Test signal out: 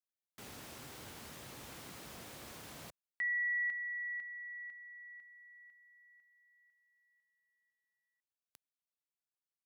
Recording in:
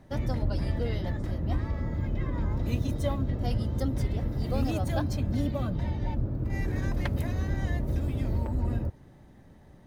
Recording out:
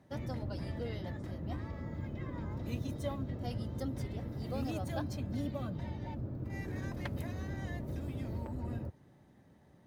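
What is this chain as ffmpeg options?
ffmpeg -i in.wav -af "highpass=93,volume=-7dB" out.wav

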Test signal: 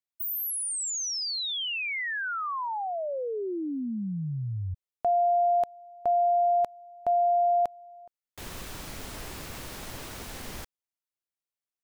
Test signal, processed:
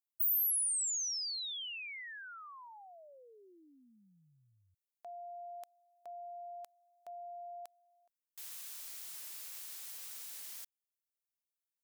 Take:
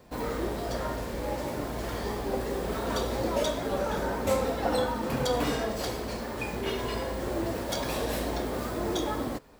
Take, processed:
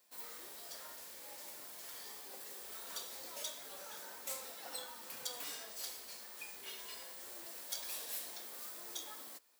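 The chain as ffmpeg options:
ffmpeg -i in.wav -af "aderivative,volume=-3.5dB" out.wav

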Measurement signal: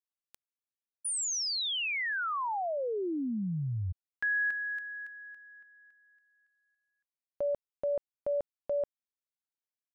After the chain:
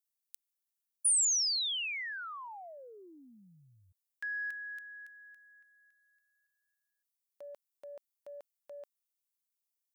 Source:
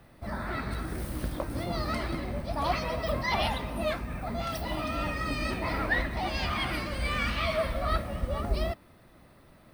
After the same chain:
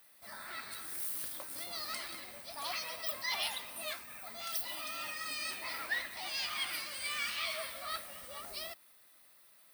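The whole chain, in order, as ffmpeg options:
ffmpeg -i in.wav -af "aeval=exprs='0.2*(cos(1*acos(clip(val(0)/0.2,-1,1)))-cos(1*PI/2))+0.00251*(cos(5*acos(clip(val(0)/0.2,-1,1)))-cos(5*PI/2))':channel_layout=same,aderivative,volume=4.5dB" out.wav

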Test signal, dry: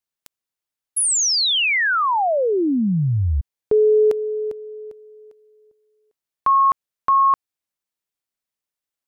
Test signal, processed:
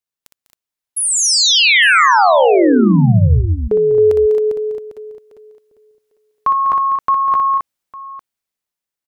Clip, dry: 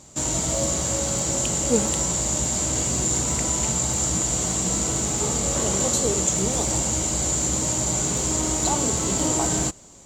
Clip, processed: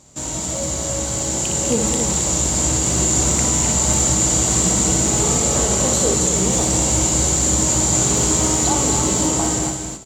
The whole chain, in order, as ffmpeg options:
ffmpeg -i in.wav -filter_complex "[0:a]dynaudnorm=framelen=320:gausssize=9:maxgain=11dB,alimiter=limit=-7dB:level=0:latency=1:release=88,asplit=2[link_01][link_02];[link_02]aecho=0:1:60|199|236|237|269|854:0.501|0.299|0.178|0.133|0.473|0.112[link_03];[link_01][link_03]amix=inputs=2:normalize=0,volume=-2dB" out.wav

